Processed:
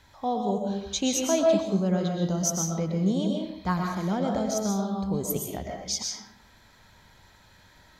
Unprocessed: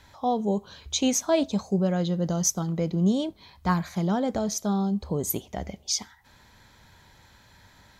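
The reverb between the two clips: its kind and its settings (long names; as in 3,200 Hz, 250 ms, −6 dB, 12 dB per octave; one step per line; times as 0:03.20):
comb and all-pass reverb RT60 0.72 s, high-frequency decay 0.75×, pre-delay 85 ms, DRR 0.5 dB
level −3 dB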